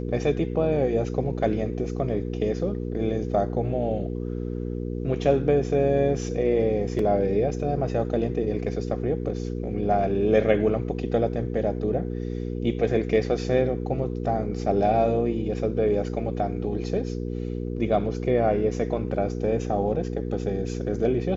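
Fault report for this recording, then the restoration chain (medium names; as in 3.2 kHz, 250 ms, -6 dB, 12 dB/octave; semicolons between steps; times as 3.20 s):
hum 60 Hz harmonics 8 -30 dBFS
6.99 s: dropout 2.6 ms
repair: de-hum 60 Hz, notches 8; interpolate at 6.99 s, 2.6 ms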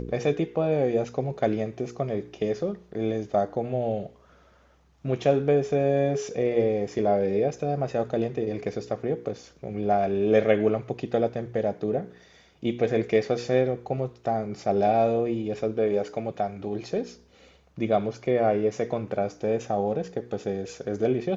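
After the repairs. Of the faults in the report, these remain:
nothing left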